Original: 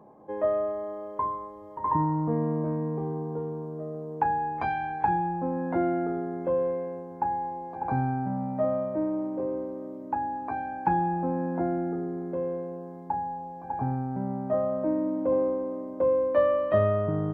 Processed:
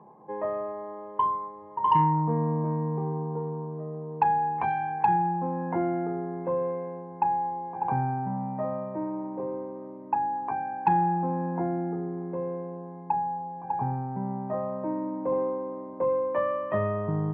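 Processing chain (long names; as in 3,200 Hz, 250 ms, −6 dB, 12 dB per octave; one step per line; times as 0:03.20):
loudspeaker in its box 130–2,500 Hz, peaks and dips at 160 Hz +4 dB, 280 Hz −9 dB, 600 Hz −8 dB, 950 Hz +7 dB, 1,400 Hz −7 dB
soft clipping −12 dBFS, distortion −25 dB
level +1.5 dB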